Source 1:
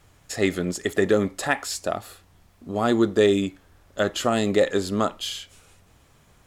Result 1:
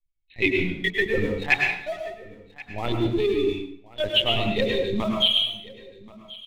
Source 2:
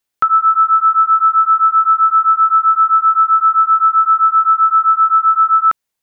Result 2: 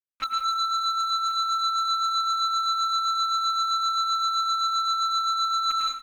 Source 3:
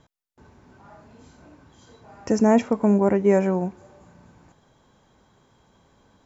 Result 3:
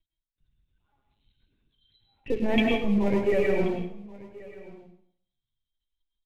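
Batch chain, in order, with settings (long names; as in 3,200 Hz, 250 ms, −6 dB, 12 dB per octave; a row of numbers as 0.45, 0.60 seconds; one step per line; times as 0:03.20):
spectral dynamics exaggerated over time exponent 2
linear-prediction vocoder at 8 kHz pitch kept
hum removal 61.87 Hz, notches 24
leveller curve on the samples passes 1
dense smooth reverb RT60 0.6 s, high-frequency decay 0.85×, pre-delay 90 ms, DRR 1.5 dB
reversed playback
downward compressor 10 to 1, threshold −19 dBFS
reversed playback
high shelf with overshoot 1,800 Hz +8 dB, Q 3
single-tap delay 1,080 ms −20.5 dB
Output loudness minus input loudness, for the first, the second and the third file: +0.5, −13.0, −5.0 LU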